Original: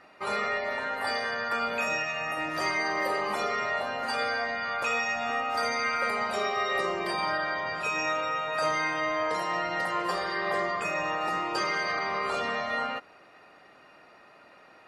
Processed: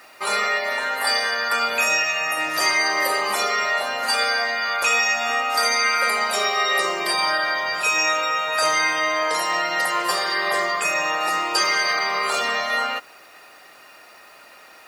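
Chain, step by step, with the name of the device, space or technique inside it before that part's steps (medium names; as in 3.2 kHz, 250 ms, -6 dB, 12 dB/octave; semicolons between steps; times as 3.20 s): turntable without a phono preamp (RIAA curve recording; white noise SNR 36 dB); trim +6.5 dB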